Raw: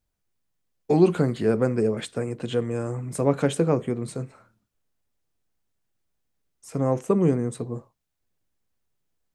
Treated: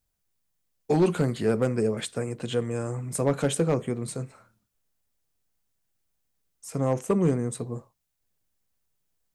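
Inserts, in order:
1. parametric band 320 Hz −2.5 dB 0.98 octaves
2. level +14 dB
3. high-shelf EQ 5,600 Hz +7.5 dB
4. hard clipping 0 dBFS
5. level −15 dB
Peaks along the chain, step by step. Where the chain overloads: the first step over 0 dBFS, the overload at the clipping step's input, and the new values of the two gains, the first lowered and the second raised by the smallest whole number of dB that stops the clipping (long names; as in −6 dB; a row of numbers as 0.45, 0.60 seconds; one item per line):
−7.5, +6.5, +6.5, 0.0, −15.0 dBFS
step 2, 6.5 dB
step 2 +7 dB, step 5 −8 dB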